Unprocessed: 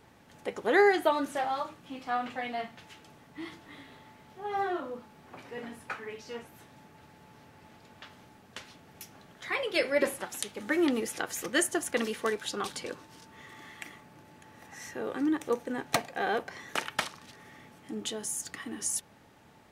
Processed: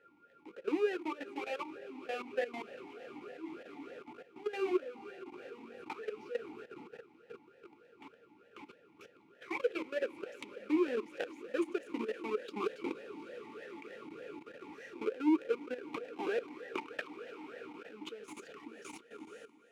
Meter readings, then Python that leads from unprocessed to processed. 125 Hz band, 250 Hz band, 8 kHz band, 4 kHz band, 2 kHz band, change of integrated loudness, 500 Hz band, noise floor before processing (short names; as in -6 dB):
under -10 dB, -3.5 dB, under -20 dB, -13.0 dB, -11.0 dB, -8.0 dB, -5.0 dB, -58 dBFS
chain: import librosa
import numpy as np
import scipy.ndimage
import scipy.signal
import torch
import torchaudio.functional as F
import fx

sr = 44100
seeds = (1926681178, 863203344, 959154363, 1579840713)

p1 = fx.halfwave_hold(x, sr)
p2 = fx.rider(p1, sr, range_db=5, speed_s=0.5)
p3 = p2 + fx.echo_diffused(p2, sr, ms=474, feedback_pct=78, wet_db=-15.5, dry=0)
p4 = p3 + 10.0 ** (-51.0 / 20.0) * np.sin(2.0 * np.pi * 1400.0 * np.arange(len(p3)) / sr)
p5 = fx.level_steps(p4, sr, step_db=14)
p6 = fx.vowel_sweep(p5, sr, vowels='e-u', hz=3.3)
y = p6 * librosa.db_to_amplitude(5.0)